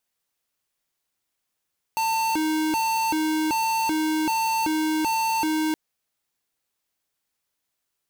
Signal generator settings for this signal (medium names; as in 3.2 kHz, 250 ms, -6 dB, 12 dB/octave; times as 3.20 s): siren hi-lo 312–897 Hz 1.3 per s square -23.5 dBFS 3.77 s